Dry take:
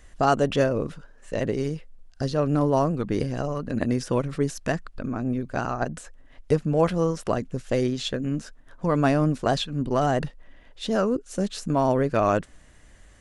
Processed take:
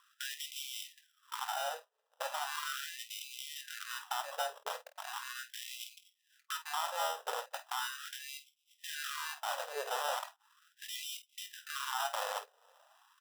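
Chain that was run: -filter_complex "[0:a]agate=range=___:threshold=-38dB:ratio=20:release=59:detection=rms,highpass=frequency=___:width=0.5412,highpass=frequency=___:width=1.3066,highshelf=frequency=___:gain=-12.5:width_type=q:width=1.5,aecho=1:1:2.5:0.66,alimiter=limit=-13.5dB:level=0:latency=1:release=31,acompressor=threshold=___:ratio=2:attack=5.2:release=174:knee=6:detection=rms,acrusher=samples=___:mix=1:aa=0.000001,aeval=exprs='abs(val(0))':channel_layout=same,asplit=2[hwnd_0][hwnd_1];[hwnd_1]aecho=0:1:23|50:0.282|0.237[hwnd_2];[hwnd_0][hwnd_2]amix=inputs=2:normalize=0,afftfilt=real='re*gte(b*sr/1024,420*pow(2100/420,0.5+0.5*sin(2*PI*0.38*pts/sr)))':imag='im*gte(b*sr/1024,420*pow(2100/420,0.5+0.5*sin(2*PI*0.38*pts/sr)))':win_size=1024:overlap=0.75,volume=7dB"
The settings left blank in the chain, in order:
-9dB, 81, 81, 4800, -43dB, 20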